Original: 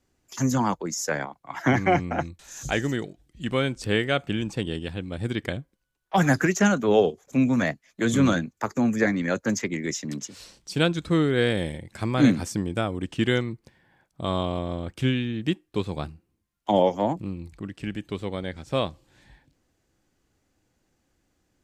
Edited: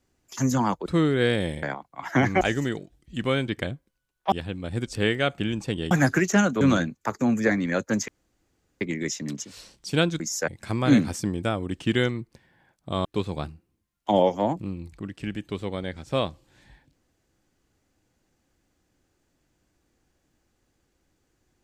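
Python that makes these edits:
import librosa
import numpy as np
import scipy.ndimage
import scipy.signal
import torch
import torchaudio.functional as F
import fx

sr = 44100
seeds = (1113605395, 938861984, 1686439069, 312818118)

y = fx.edit(x, sr, fx.swap(start_s=0.86, length_s=0.28, other_s=11.03, other_length_s=0.77),
    fx.cut(start_s=1.92, length_s=0.76),
    fx.swap(start_s=3.75, length_s=1.05, other_s=5.34, other_length_s=0.84),
    fx.cut(start_s=6.88, length_s=1.29),
    fx.insert_room_tone(at_s=9.64, length_s=0.73),
    fx.cut(start_s=14.37, length_s=1.28), tone=tone)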